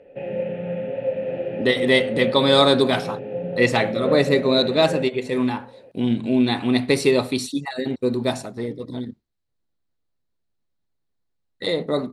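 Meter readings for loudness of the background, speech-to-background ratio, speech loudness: -27.5 LUFS, 7.0 dB, -20.5 LUFS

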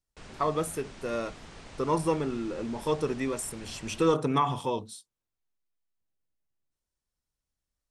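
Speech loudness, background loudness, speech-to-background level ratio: -30.5 LUFS, -48.0 LUFS, 17.5 dB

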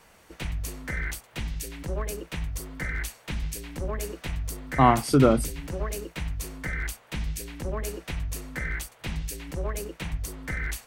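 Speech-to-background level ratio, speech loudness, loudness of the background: 12.5 dB, -21.5 LUFS, -34.0 LUFS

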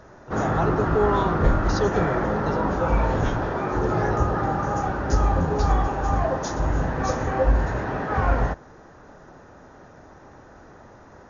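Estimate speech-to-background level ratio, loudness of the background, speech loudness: -4.5 dB, -24.0 LUFS, -28.5 LUFS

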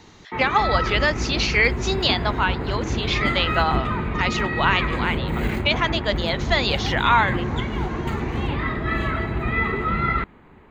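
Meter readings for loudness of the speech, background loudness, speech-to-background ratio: -22.5 LUFS, -25.0 LUFS, 2.5 dB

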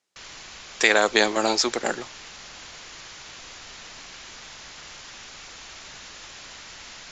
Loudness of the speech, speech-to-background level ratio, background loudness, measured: -21.0 LUFS, 19.0 dB, -40.0 LUFS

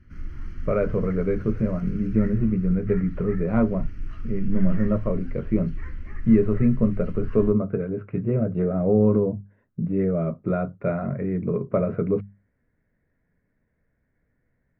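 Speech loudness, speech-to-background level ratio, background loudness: -24.0 LUFS, 15.0 dB, -39.0 LUFS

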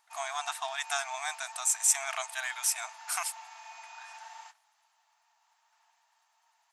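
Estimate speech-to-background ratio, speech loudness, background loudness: 16.5 dB, -31.0 LUFS, -47.5 LUFS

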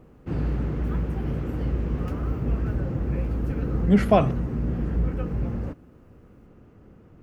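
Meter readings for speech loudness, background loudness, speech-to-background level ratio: -21.5 LUFS, -28.5 LUFS, 7.0 dB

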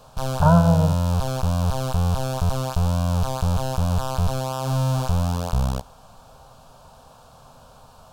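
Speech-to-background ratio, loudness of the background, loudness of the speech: 4.5 dB, -24.0 LUFS, -19.5 LUFS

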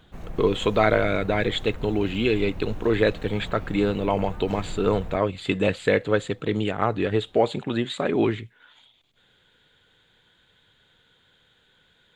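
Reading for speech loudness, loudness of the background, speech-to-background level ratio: -24.5 LUFS, -40.0 LUFS, 15.5 dB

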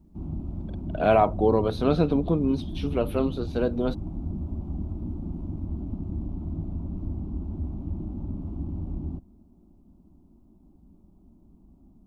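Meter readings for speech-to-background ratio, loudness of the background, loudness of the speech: 9.5 dB, -34.5 LUFS, -25.0 LUFS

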